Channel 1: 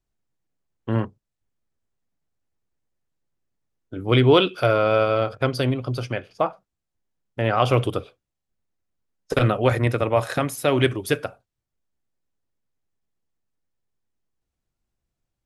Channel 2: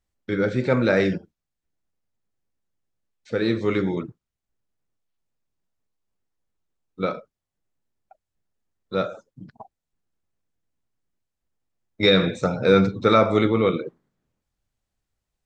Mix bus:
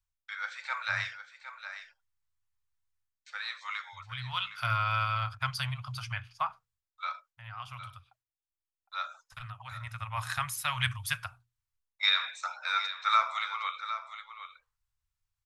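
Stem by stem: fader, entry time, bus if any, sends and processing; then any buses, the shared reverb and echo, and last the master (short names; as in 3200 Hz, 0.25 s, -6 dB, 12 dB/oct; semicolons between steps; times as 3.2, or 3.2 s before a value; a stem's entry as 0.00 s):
-3.0 dB, 0.00 s, no send, no echo send, auto duck -15 dB, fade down 0.25 s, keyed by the second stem
-3.5 dB, 0.00 s, no send, echo send -11 dB, gate with hold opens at -45 dBFS; steep high-pass 440 Hz 36 dB/oct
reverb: off
echo: echo 0.761 s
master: elliptic band-stop 110–1000 Hz, stop band 80 dB; notches 60/120/180/240/300/360/420/480 Hz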